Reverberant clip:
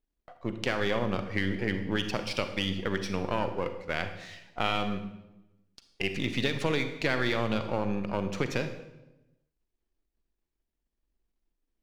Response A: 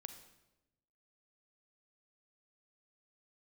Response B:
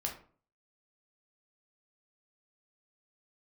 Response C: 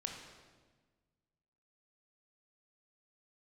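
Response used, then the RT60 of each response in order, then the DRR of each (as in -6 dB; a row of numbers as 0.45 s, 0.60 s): A; 1.0 s, 0.45 s, 1.4 s; 8.0 dB, 0.0 dB, 1.5 dB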